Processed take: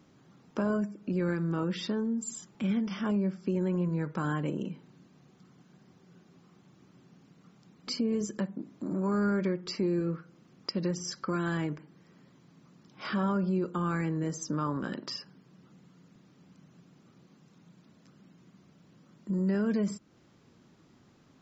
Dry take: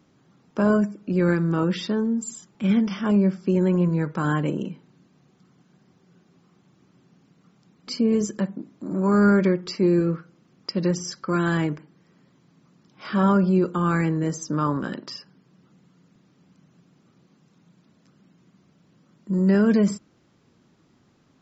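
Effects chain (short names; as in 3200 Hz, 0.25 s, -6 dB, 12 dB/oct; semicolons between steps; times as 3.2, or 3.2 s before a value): compressor 2:1, threshold -34 dBFS, peak gain reduction 11.5 dB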